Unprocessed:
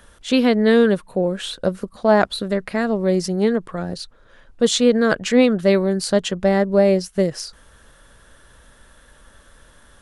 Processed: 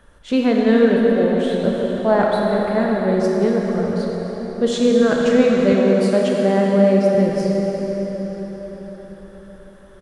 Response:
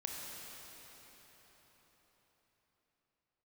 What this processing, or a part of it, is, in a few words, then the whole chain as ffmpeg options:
cathedral: -filter_complex "[1:a]atrim=start_sample=2205[link_01];[0:a][link_01]afir=irnorm=-1:irlink=0,asettb=1/sr,asplit=3[link_02][link_03][link_04];[link_02]atrim=end=5.724[link_05];[link_03]atrim=start=5.72:end=7.15,asetpts=PTS-STARTPTS,afade=type=in:duration=0.004:curve=qsin,afade=type=out:start_time=1.426:duration=0.004:curve=qsin,highpass=140[link_06];[link_04]atrim=start=7.146[link_07];[link_05][link_06]acrossfade=duration=0.004:curve1=hsin:curve2=qsin[link_08];[link_08][link_07]acrossfade=duration=0.004:curve1=qsin:curve2=hsin,highshelf=frequency=2600:gain=-10.5,asplit=2[link_09][link_10];[link_10]adelay=616,lowpass=frequency=2000:poles=1,volume=-18dB,asplit=2[link_11][link_12];[link_12]adelay=616,lowpass=frequency=2000:poles=1,volume=0.48,asplit=2[link_13][link_14];[link_14]adelay=616,lowpass=frequency=2000:poles=1,volume=0.48,asplit=2[link_15][link_16];[link_16]adelay=616,lowpass=frequency=2000:poles=1,volume=0.48[link_17];[link_09][link_11][link_13][link_15][link_17]amix=inputs=5:normalize=0,volume=2dB"

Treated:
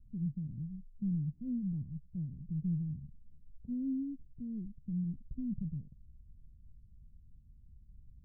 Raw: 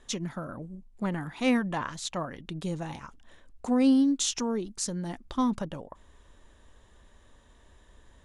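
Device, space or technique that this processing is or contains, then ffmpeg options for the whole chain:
the neighbour's flat through the wall: -af "lowpass=frequency=170:width=0.5412,lowpass=frequency=170:width=1.3066,equalizer=frequency=140:width_type=o:width=0.77:gain=4.5,volume=1dB"

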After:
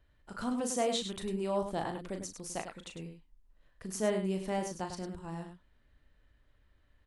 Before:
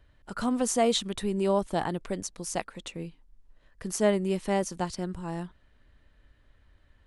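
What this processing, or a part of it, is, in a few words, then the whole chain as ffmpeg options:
slapback doubling: -filter_complex "[0:a]asettb=1/sr,asplit=3[link_01][link_02][link_03];[link_01]atrim=end=0.604[link_04];[link_02]atrim=start=0.6:end=1.01,asetpts=PTS-STARTPTS,afade=type=in:duration=0.004:curve=qsin,afade=type=out:start_time=0.406:duration=0.004:curve=qsin,highpass=89[link_05];[link_03]atrim=start=1.006[link_06];[link_04][link_05]acrossfade=duration=0.004:curve1=hsin:curve2=qsin[link_07];[link_07][link_06]acrossfade=duration=0.004:curve1=qsin:curve2=hsin,asplit=3[link_08][link_09][link_10];[link_09]adelay=37,volume=-7dB[link_11];[link_10]adelay=101,volume=-8dB[link_12];[link_08][link_11][link_12]amix=inputs=3:normalize=0,volume=-7.5dB"

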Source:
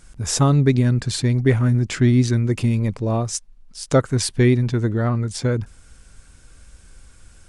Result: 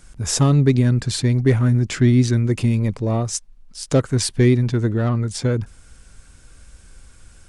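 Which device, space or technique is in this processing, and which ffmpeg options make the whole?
one-band saturation: -filter_complex "[0:a]acrossover=split=530|3300[link_01][link_02][link_03];[link_02]asoftclip=type=tanh:threshold=-24dB[link_04];[link_01][link_04][link_03]amix=inputs=3:normalize=0,volume=1dB"

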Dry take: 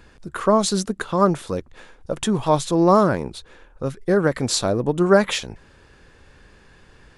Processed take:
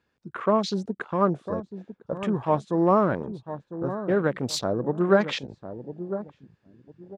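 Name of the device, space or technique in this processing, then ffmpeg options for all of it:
over-cleaned archive recording: -filter_complex "[0:a]highpass=100,lowpass=6400,asplit=2[link_01][link_02];[link_02]adelay=1001,lowpass=frequency=830:poles=1,volume=-10dB,asplit=2[link_03][link_04];[link_04]adelay=1001,lowpass=frequency=830:poles=1,volume=0.29,asplit=2[link_05][link_06];[link_06]adelay=1001,lowpass=frequency=830:poles=1,volume=0.29[link_07];[link_01][link_03][link_05][link_07]amix=inputs=4:normalize=0,afwtdn=0.0251,volume=-5dB"

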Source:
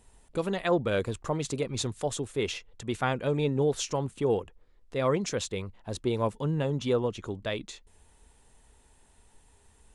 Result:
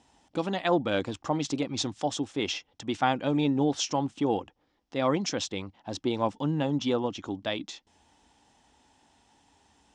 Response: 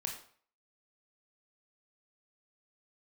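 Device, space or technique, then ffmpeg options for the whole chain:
car door speaker: -af "highpass=110,equalizer=frequency=120:width_type=q:width=4:gain=-4,equalizer=frequency=290:width_type=q:width=4:gain=9,equalizer=frequency=430:width_type=q:width=4:gain=-7,equalizer=frequency=800:width_type=q:width=4:gain=8,equalizer=frequency=3200:width_type=q:width=4:gain=5,equalizer=frequency=5400:width_type=q:width=4:gain=7,lowpass=frequency=7000:width=0.5412,lowpass=frequency=7000:width=1.3066"

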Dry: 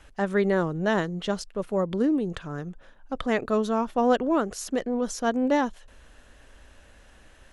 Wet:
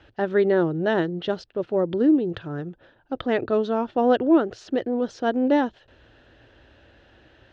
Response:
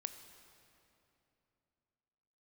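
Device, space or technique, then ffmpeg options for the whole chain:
guitar cabinet: -af "highpass=77,equalizer=frequency=110:width_type=q:width=4:gain=8,equalizer=frequency=200:width_type=q:width=4:gain=-6,equalizer=frequency=340:width_type=q:width=4:gain=7,equalizer=frequency=1100:width_type=q:width=4:gain=-8,equalizer=frequency=2200:width_type=q:width=4:gain=-6,lowpass=frequency=4100:width=0.5412,lowpass=frequency=4100:width=1.3066,volume=2.5dB"

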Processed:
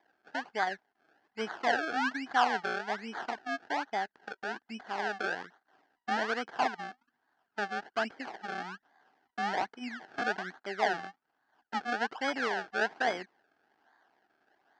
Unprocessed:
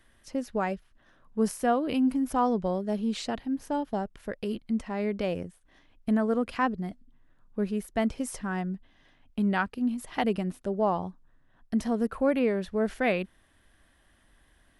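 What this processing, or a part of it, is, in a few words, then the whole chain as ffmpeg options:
circuit-bent sampling toy: -af "acrusher=samples=31:mix=1:aa=0.000001:lfo=1:lforange=31:lforate=1.2,highpass=500,equalizer=frequency=540:width_type=q:width=4:gain=-10,equalizer=frequency=780:width_type=q:width=4:gain=7,equalizer=frequency=1100:width_type=q:width=4:gain=-4,equalizer=frequency=1600:width_type=q:width=4:gain=9,equalizer=frequency=2400:width_type=q:width=4:gain=-6,equalizer=frequency=3700:width_type=q:width=4:gain=-7,lowpass=frequency=4600:width=0.5412,lowpass=frequency=4600:width=1.3066,highshelf=frequency=10000:gain=5,volume=-1dB"

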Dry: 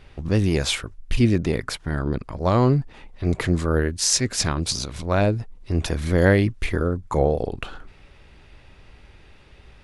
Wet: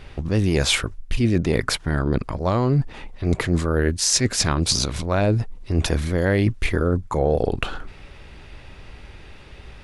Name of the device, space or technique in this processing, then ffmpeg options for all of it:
compression on the reversed sound: -af "areverse,acompressor=threshold=-23dB:ratio=6,areverse,volume=7dB"

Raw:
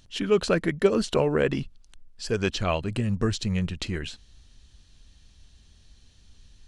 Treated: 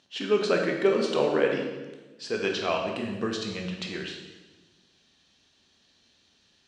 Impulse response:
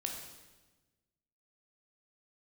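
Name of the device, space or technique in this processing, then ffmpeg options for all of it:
supermarket ceiling speaker: -filter_complex "[0:a]highpass=290,lowpass=5300[link_01];[1:a]atrim=start_sample=2205[link_02];[link_01][link_02]afir=irnorm=-1:irlink=0"

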